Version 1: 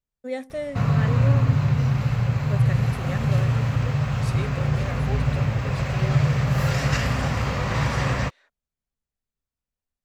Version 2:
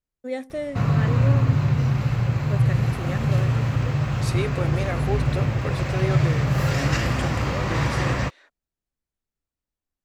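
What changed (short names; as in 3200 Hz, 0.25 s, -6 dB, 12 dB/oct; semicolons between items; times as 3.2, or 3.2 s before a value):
second voice +6.5 dB; master: add bell 330 Hz +12.5 dB 0.21 oct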